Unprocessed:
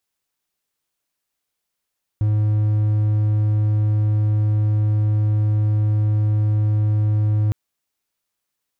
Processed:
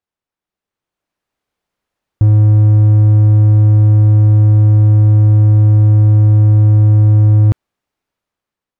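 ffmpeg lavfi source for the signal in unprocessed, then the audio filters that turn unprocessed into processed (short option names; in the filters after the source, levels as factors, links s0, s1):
-f lavfi -i "aevalsrc='0.224*(1-4*abs(mod(106*t+0.25,1)-0.5))':d=5.31:s=44100"
-af "lowpass=f=1200:p=1,dynaudnorm=f=430:g=5:m=3.98"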